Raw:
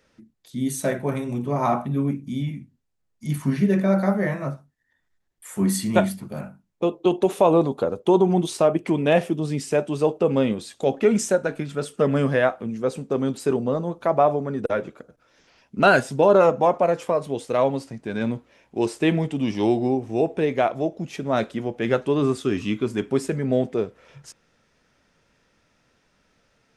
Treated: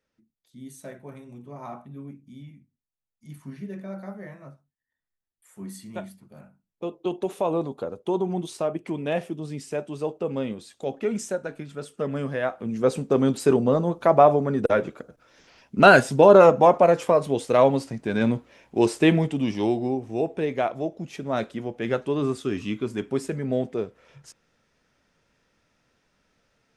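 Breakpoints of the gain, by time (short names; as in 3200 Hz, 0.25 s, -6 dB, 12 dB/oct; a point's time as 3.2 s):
6.27 s -16.5 dB
6.96 s -8 dB
12.39 s -8 dB
12.82 s +3 dB
18.99 s +3 dB
19.78 s -4 dB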